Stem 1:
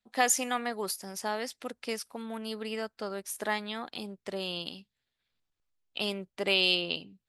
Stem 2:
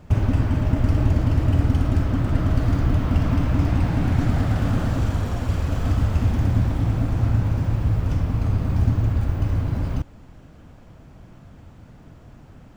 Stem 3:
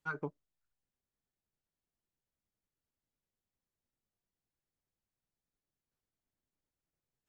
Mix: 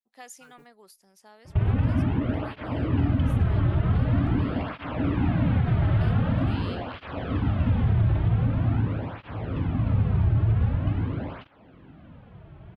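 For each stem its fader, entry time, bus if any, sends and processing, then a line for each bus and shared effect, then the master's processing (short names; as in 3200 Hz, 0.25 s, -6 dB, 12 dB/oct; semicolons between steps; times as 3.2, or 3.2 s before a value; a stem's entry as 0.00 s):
-19.5 dB, 0.00 s, no send, dry
+1.5 dB, 1.45 s, no send, steep low-pass 3600 Hz 36 dB/oct; tape flanging out of phase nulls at 0.45 Hz, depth 4.3 ms
-13.0 dB, 0.35 s, no send, modulation noise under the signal 22 dB; soft clip -35.5 dBFS, distortion -10 dB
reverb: off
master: limiter -14 dBFS, peak gain reduction 6 dB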